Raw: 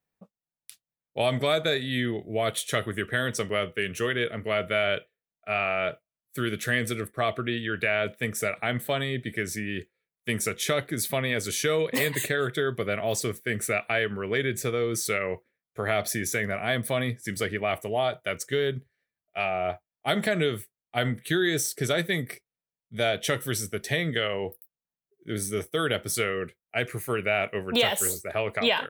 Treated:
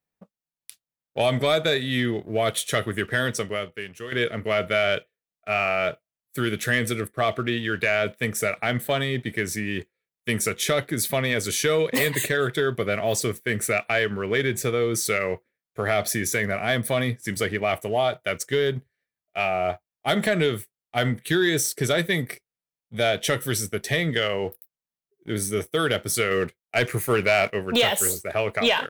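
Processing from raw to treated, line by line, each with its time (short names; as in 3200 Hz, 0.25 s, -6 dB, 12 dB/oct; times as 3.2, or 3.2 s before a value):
3.26–4.12 fade out quadratic, to -12 dB
26.31–27.51 sample leveller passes 1
whole clip: sample leveller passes 1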